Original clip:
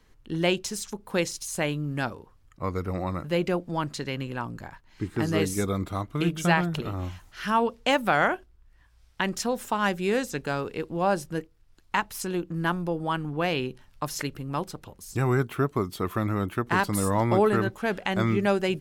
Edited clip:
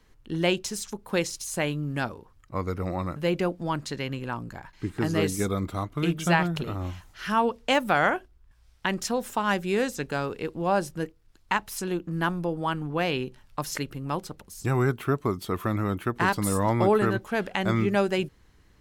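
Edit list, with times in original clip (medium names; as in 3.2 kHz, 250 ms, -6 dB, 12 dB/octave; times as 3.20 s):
shrink pauses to 70%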